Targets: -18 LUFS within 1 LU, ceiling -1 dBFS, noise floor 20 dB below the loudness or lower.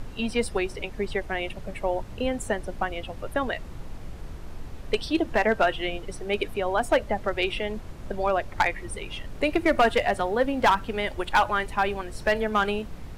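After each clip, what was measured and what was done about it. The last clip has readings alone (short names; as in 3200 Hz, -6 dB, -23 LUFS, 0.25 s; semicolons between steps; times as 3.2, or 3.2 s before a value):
clipped 0.3%; flat tops at -13.5 dBFS; noise floor -40 dBFS; noise floor target -47 dBFS; loudness -26.5 LUFS; peak -13.5 dBFS; loudness target -18.0 LUFS
-> clip repair -13.5 dBFS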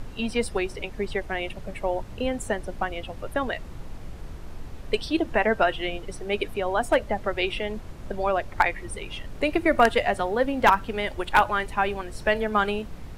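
clipped 0.0%; noise floor -40 dBFS; noise floor target -46 dBFS
-> noise print and reduce 6 dB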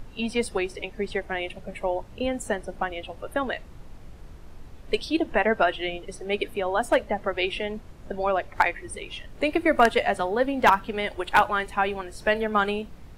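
noise floor -45 dBFS; noise floor target -46 dBFS
-> noise print and reduce 6 dB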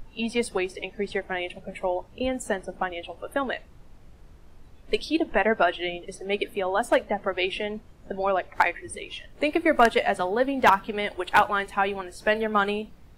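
noise floor -50 dBFS; loudness -26.0 LUFS; peak -4.5 dBFS; loudness target -18.0 LUFS
-> gain +8 dB; limiter -1 dBFS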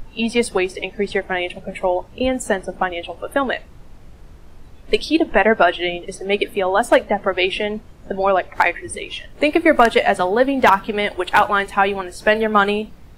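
loudness -18.5 LUFS; peak -1.0 dBFS; noise floor -42 dBFS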